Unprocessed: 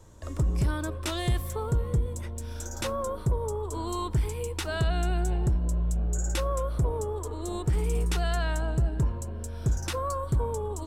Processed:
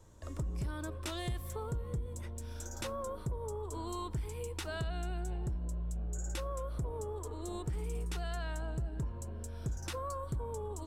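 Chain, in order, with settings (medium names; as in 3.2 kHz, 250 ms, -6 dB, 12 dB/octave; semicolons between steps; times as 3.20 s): compression 2.5:1, threshold -29 dBFS, peak gain reduction 5.5 dB; trim -6.5 dB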